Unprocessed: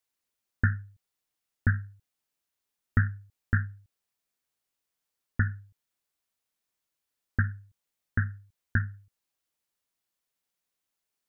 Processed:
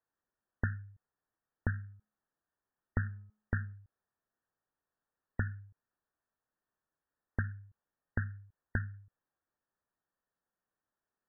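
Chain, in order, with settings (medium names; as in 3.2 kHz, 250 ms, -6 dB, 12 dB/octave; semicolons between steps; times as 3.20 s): 1.73–3.73 s: de-hum 213 Hz, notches 6; compression 3:1, threshold -34 dBFS, peak gain reduction 12 dB; brick-wall FIR low-pass 1.9 kHz; trim +1.5 dB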